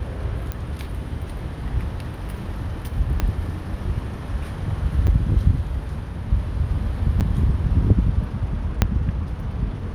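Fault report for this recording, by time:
0:00.52: click −13 dBFS
0:03.20: click −9 dBFS
0:05.07–0:05.08: drop-out 5.8 ms
0:07.20–0:07.21: drop-out 8.2 ms
0:08.82: click −2 dBFS

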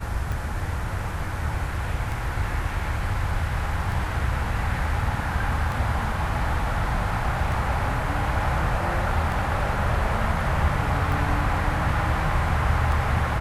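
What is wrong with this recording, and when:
scratch tick 33 1/3 rpm

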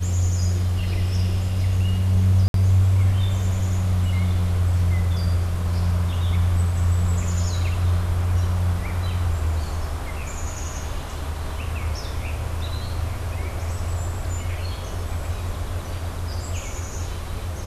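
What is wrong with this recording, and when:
0:02.48–0:02.54: drop-out 62 ms

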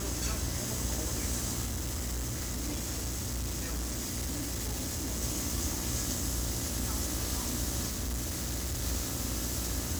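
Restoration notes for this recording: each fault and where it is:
mains buzz 60 Hz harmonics 24 −38 dBFS
0:01.65–0:05.23: clipping −31 dBFS
0:07.89–0:08.84: clipping −30.5 dBFS

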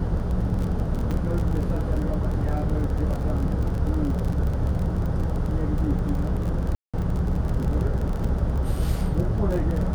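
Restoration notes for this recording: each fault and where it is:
surface crackle 36 per second −28 dBFS
0:01.11: drop-out 4.7 ms
0:06.75–0:06.94: drop-out 186 ms

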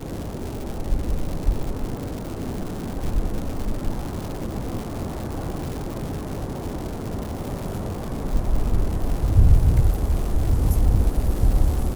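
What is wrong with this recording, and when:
surface crackle 270 per second −28 dBFS

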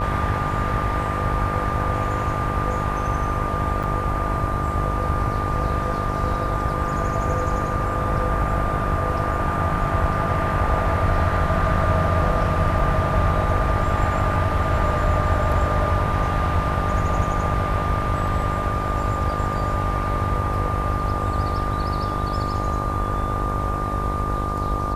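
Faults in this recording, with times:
mains buzz 50 Hz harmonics 22 −27 dBFS
whistle 1,200 Hz −26 dBFS
0:03.83–0:03.84: drop-out 6.6 ms
0:12.79: drop-out 2.5 ms

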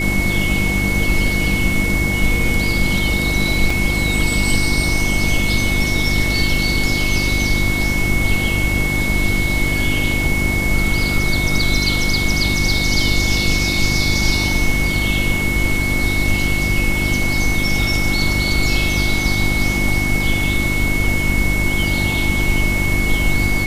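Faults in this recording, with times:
mains hum 50 Hz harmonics 7 −22 dBFS
whistle 2,200 Hz −20 dBFS
0:03.70: drop-out 3.3 ms

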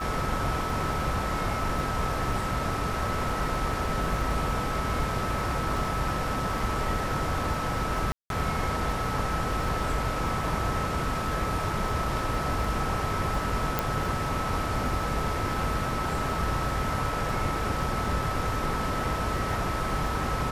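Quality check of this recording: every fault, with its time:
surface crackle 27 per second −35 dBFS
whistle 1,300 Hz −33 dBFS
0:08.12–0:08.30: drop-out 182 ms
0:13.79: click

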